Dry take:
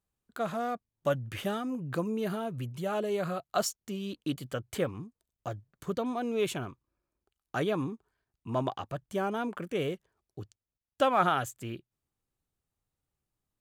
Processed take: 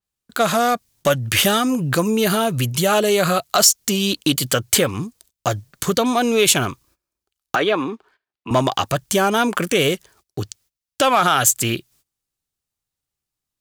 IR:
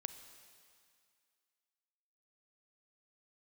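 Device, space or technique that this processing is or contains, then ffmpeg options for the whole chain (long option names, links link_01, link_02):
mastering chain: -filter_complex "[0:a]equalizer=frequency=4900:width_type=o:width=0.95:gain=2.5,acompressor=threshold=-33dB:ratio=2,asoftclip=type=tanh:threshold=-21.5dB,tiltshelf=frequency=1500:gain=-5,alimiter=level_in=26dB:limit=-1dB:release=50:level=0:latency=1,asettb=1/sr,asplit=3[link_01][link_02][link_03];[link_01]atrim=end=7.554[link_04];[link_02]atrim=start=7.55:end=8.51,asetpts=PTS-STARTPTS,afade=type=in:duration=0.004:curve=qsin,afade=type=out:start_time=0.956:duration=0.004:curve=qsin,acrossover=split=250 3700:gain=0.126 1 0.0794[link_05][link_06][link_07];[link_05][link_06][link_07]amix=inputs=3:normalize=0[link_08];[link_03]atrim=start=8.506[link_09];[link_04][link_08]acrossfade=duration=0.004:curve1=hsin:curve2=qsin[link_10];[link_10][link_09]acrossfade=duration=0.004:curve1=qsin:curve2=hsin,agate=range=-20dB:threshold=-48dB:ratio=16:detection=peak,adynamicequalizer=threshold=0.0282:dfrequency=4700:dqfactor=0.7:tfrequency=4700:tqfactor=0.7:attack=5:release=100:ratio=0.375:range=2.5:mode=boostabove:tftype=highshelf,volume=-5dB"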